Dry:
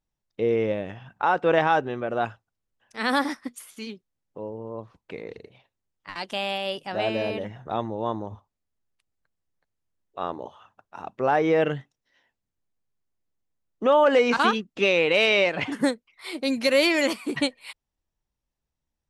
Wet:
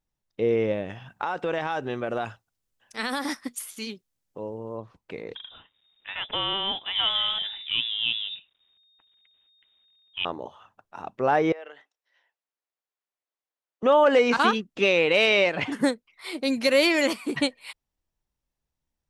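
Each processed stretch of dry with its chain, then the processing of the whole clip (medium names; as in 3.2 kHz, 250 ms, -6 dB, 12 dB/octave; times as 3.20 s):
0.90–4.78 s: treble shelf 3.4 kHz +8.5 dB + compression 12:1, threshold -23 dBFS
5.35–10.25 s: companding laws mixed up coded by mu + frequency inversion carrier 3.7 kHz
11.52–13.83 s: Bessel high-pass 660 Hz, order 4 + compression 5:1, threshold -39 dBFS + treble shelf 5 kHz -10.5 dB
whole clip: none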